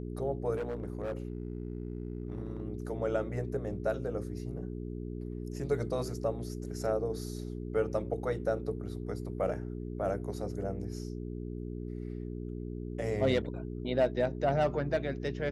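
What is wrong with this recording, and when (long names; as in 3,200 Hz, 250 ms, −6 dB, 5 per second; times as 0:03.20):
mains hum 60 Hz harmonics 7 −39 dBFS
0:00.55–0:02.63: clipping −31 dBFS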